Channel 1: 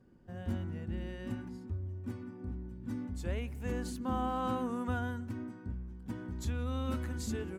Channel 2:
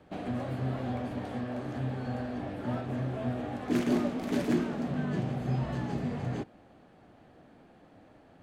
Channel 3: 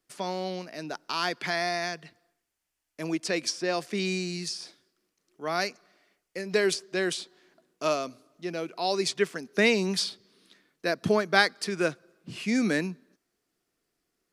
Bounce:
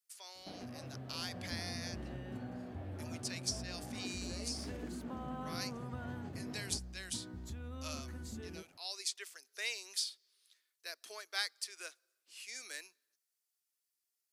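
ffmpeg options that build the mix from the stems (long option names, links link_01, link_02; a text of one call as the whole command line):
ffmpeg -i stem1.wav -i stem2.wav -i stem3.wav -filter_complex "[0:a]acompressor=threshold=-36dB:ratio=6,adelay=1050,volume=-5.5dB[link_01];[1:a]acompressor=threshold=-33dB:ratio=6,adelay=350,volume=-10.5dB[link_02];[2:a]highpass=frequency=350:width=0.5412,highpass=frequency=350:width=1.3066,aderivative,volume=-4.5dB[link_03];[link_01][link_02][link_03]amix=inputs=3:normalize=0" out.wav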